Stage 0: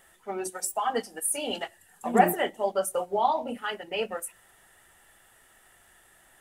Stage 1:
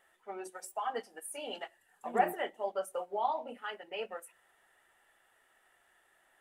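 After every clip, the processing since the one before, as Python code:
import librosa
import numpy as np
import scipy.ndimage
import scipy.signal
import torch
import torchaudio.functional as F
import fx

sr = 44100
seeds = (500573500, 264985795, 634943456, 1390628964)

y = fx.bass_treble(x, sr, bass_db=-13, treble_db=-9)
y = y * 10.0 ** (-7.5 / 20.0)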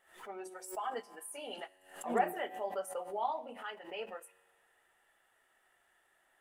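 y = fx.comb_fb(x, sr, f0_hz=93.0, decay_s=1.9, harmonics='all', damping=0.0, mix_pct=40)
y = fx.pre_swell(y, sr, db_per_s=110.0)
y = y * 10.0 ** (1.0 / 20.0)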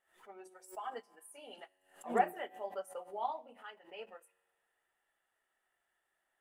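y = fx.upward_expand(x, sr, threshold_db=-50.0, expansion=1.5)
y = y * 10.0 ** (1.5 / 20.0)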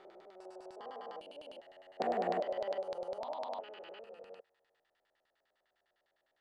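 y = fx.spec_steps(x, sr, hold_ms=400)
y = fx.filter_lfo_lowpass(y, sr, shape='square', hz=9.9, low_hz=590.0, high_hz=4400.0, q=3.6)
y = y * 10.0 ** (3.5 / 20.0)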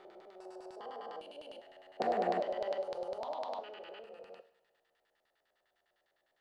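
y = fx.rev_double_slope(x, sr, seeds[0], early_s=0.62, late_s=2.1, knee_db=-18, drr_db=11.0)
y = y * 10.0 ** (1.0 / 20.0)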